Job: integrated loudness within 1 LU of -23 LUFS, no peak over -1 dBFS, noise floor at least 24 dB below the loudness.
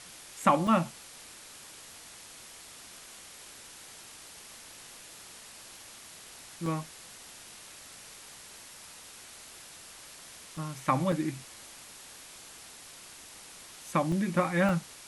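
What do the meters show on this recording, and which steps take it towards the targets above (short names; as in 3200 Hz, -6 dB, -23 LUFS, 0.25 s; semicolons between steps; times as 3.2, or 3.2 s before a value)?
dropouts 6; longest dropout 2.5 ms; noise floor -50 dBFS; noise floor target -54 dBFS; loudness -30.0 LUFS; peak -9.0 dBFS; loudness target -23.0 LUFS
-> interpolate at 0.67/6.66/10.57/11.12/14.12/14.69, 2.5 ms; denoiser 6 dB, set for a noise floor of -50 dBFS; gain +7 dB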